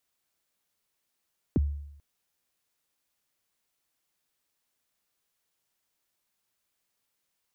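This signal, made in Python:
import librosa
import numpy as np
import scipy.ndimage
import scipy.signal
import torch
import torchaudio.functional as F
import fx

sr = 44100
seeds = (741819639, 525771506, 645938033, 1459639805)

y = fx.drum_kick(sr, seeds[0], length_s=0.44, level_db=-18.5, start_hz=390.0, end_hz=72.0, sweep_ms=25.0, decay_s=0.79, click=False)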